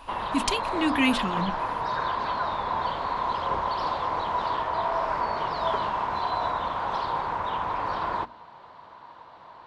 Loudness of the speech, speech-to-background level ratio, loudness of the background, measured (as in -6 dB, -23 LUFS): -27.5 LUFS, 1.0 dB, -28.5 LUFS